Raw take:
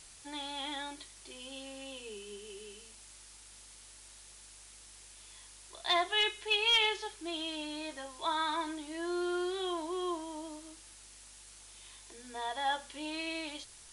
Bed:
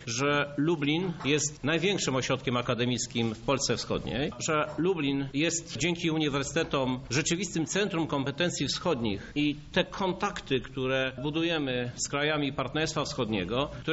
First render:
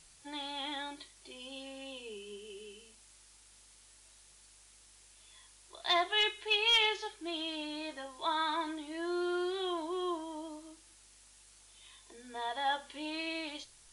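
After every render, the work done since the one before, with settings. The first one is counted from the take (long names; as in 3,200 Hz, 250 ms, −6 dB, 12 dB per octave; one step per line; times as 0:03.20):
noise reduction from a noise print 6 dB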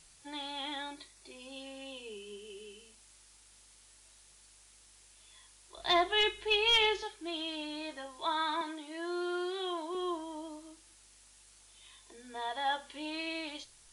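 0:00.92–0:01.56: notch filter 3,100 Hz, Q 8.4
0:05.77–0:07.03: low-shelf EQ 380 Hz +12 dB
0:08.61–0:09.95: high-pass filter 300 Hz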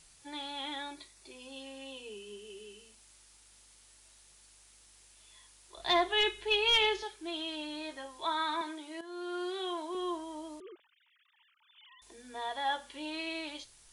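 0:09.01–0:09.49: fade in, from −12 dB
0:10.60–0:12.02: three sine waves on the formant tracks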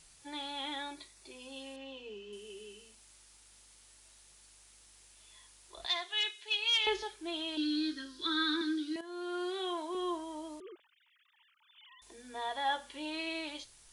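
0:01.76–0:02.33: high-frequency loss of the air 140 metres
0:05.86–0:06.87: resonant band-pass 5,500 Hz, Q 0.69
0:07.57–0:08.96: drawn EQ curve 210 Hz 0 dB, 310 Hz +11 dB, 770 Hz −29 dB, 1,500 Hz +6 dB, 2,200 Hz −7 dB, 4,500 Hz +11 dB, 7,200 Hz −3 dB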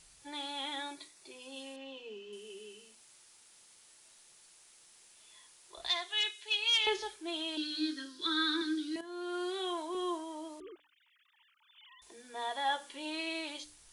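mains-hum notches 50/100/150/200/250/300 Hz
dynamic equaliser 8,700 Hz, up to +4 dB, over −56 dBFS, Q 0.79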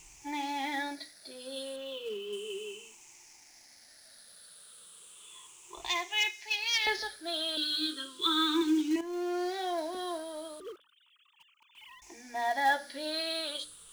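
rippled gain that drifts along the octave scale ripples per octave 0.7, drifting −0.34 Hz, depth 15 dB
in parallel at −9 dB: log-companded quantiser 4 bits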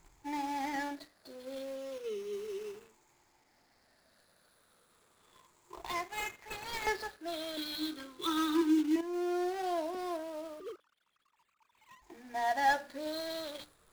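running median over 15 samples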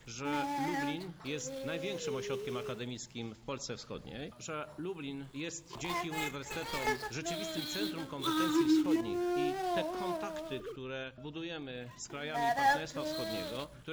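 mix in bed −13 dB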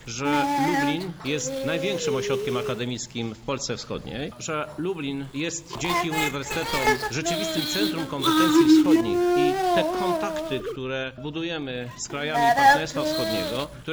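level +12 dB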